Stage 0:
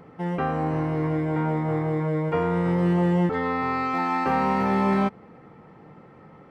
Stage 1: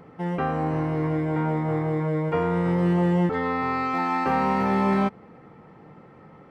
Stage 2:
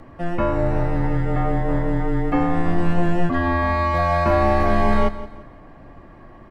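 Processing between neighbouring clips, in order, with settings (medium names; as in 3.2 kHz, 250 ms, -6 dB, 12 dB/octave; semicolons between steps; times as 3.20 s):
no audible change
frequency shift -180 Hz; feedback delay 172 ms, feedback 34%, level -15 dB; trim +5.5 dB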